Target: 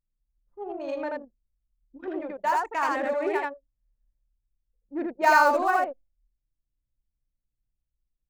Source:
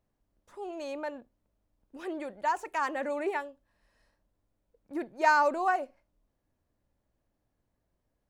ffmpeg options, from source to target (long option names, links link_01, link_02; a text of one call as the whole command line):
ffmpeg -i in.wav -af "acrusher=bits=7:mode=log:mix=0:aa=0.000001,aecho=1:1:29.15|81.63:0.316|0.891,anlmdn=1.58,volume=2.5dB" out.wav